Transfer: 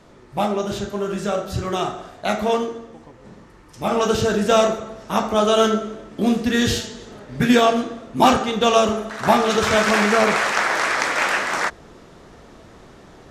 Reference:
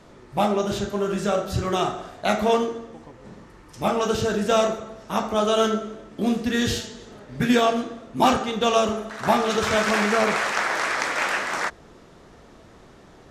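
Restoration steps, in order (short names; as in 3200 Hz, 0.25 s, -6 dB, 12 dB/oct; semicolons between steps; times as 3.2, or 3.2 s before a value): gain correction -4 dB, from 3.91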